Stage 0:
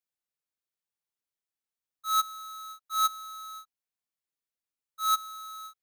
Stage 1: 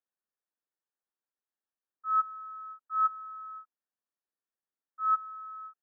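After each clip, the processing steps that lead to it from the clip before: FFT band-pass 190–1900 Hz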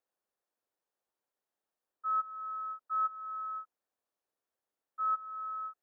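bell 570 Hz +10.5 dB 2.1 oct; compressor 2.5:1, threshold -34 dBFS, peak gain reduction 11 dB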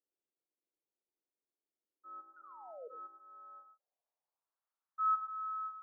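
painted sound fall, 2.36–2.88, 450–1500 Hz -39 dBFS; non-linear reverb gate 0.14 s rising, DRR 7 dB; band-pass sweep 320 Hz -> 1200 Hz, 2.93–4.7

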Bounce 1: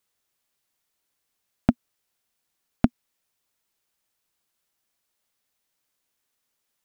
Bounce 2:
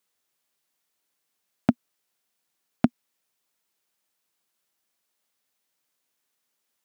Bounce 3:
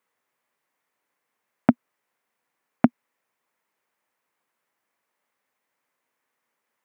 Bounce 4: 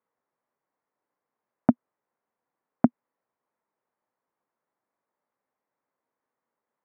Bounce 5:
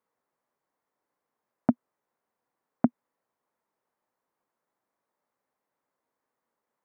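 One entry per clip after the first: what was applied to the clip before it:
HPF 140 Hz 12 dB/oct
graphic EQ 125/250/500/1000/2000/4000 Hz +6/+7/+9/+11/+11/-3 dB; gain -6.5 dB
LPF 1100 Hz 12 dB/oct; gain -2 dB
limiter -10.5 dBFS, peak gain reduction 5 dB; gain +1.5 dB

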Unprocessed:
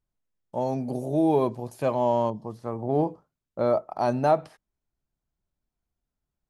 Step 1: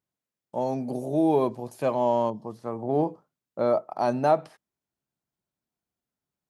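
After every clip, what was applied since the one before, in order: HPF 140 Hz 12 dB/oct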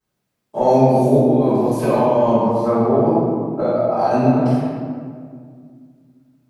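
negative-ratio compressor -27 dBFS, ratio -0.5; reverb RT60 2.0 s, pre-delay 3 ms, DRR -18.5 dB; gain -7.5 dB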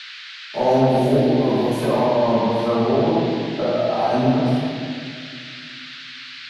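band noise 1400–4400 Hz -35 dBFS; soft clip -4 dBFS, distortion -24 dB; gain -2 dB

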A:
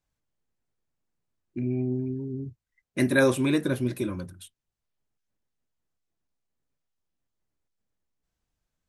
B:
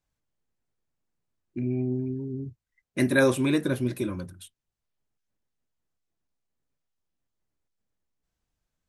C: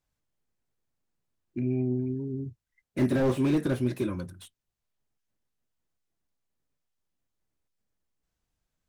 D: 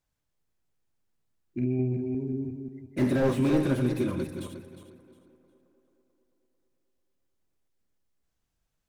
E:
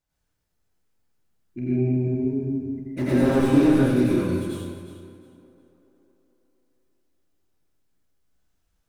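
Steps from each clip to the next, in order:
nothing audible
wow and flutter 22 cents; slew limiter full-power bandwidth 34 Hz
regenerating reverse delay 0.179 s, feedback 50%, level -6 dB; tape echo 0.221 s, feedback 73%, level -20 dB, low-pass 3200 Hz
plate-style reverb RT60 0.95 s, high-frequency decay 0.8×, pre-delay 75 ms, DRR -7 dB; gain -2 dB

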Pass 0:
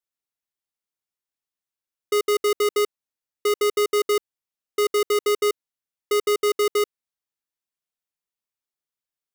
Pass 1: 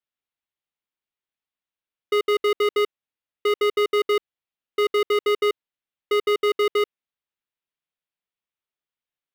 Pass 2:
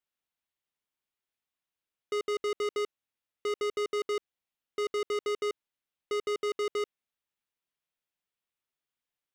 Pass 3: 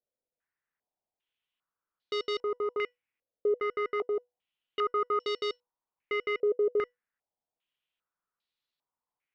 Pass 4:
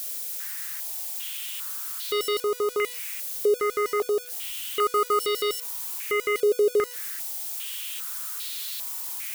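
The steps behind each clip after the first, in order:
resonant high shelf 4500 Hz -10.5 dB, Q 1.5
limiter -20 dBFS, peak gain reduction 4.5 dB; soft clip -28.5 dBFS, distortion -18 dB
resonator 490 Hz, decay 0.19 s, harmonics all, mix 50%; stepped low-pass 2.5 Hz 540–4100 Hz; gain +4 dB
switching spikes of -30 dBFS; gain +6 dB

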